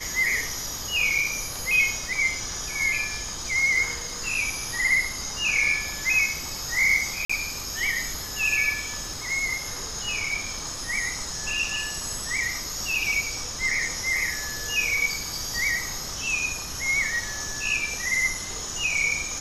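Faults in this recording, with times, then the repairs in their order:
7.25–7.29 s: dropout 45 ms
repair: interpolate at 7.25 s, 45 ms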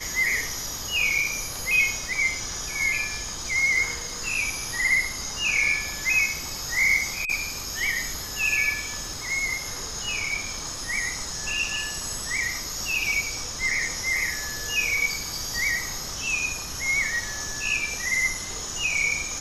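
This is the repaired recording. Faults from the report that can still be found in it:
nothing left

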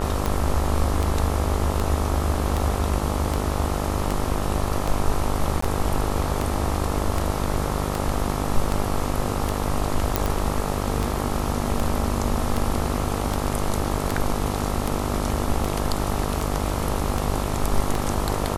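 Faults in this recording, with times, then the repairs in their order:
buzz 50 Hz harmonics 27 -27 dBFS
tick 78 rpm
5.61–5.62 s: dropout 14 ms
10.16 s: pop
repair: de-click; de-hum 50 Hz, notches 27; interpolate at 5.61 s, 14 ms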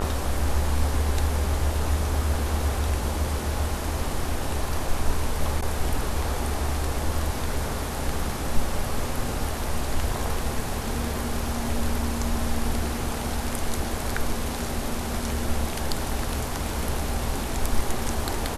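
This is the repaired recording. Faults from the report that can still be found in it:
nothing left

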